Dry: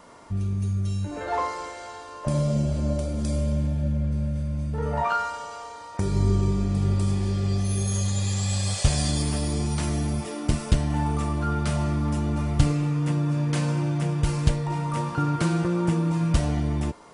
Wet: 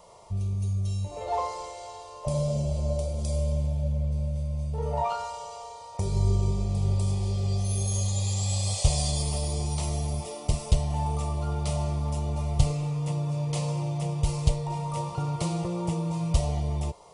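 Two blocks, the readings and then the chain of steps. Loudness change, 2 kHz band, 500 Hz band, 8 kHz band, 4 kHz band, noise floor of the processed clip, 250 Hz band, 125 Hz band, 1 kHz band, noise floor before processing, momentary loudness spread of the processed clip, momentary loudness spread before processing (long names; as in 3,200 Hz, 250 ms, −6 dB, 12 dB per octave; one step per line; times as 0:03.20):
−3.0 dB, −10.5 dB, −2.0 dB, −0.5 dB, −2.0 dB, −43 dBFS, −7.5 dB, −2.5 dB, −3.0 dB, −40 dBFS, 6 LU, 5 LU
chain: phaser with its sweep stopped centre 650 Hz, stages 4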